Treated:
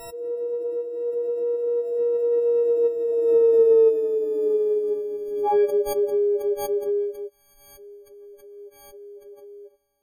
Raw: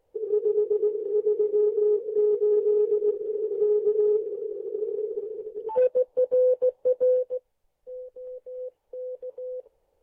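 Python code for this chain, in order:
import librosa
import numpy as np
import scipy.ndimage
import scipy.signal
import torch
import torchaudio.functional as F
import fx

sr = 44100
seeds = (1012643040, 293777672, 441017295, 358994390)

y = fx.freq_snap(x, sr, grid_st=6)
y = fx.doppler_pass(y, sr, speed_mps=28, closest_m=28.0, pass_at_s=4.09)
y = fx.pre_swell(y, sr, db_per_s=44.0)
y = y * 10.0 ** (7.0 / 20.0)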